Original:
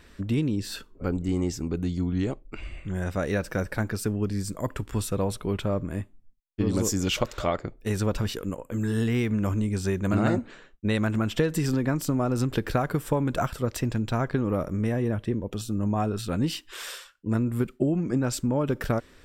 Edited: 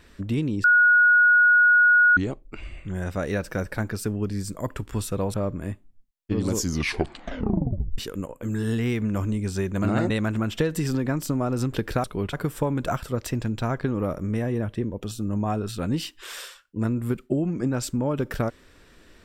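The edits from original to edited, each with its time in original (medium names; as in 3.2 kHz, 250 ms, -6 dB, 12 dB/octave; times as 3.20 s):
0.64–2.17 s: bleep 1.45 kHz -13 dBFS
5.34–5.63 s: move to 12.83 s
6.84 s: tape stop 1.43 s
10.39–10.89 s: delete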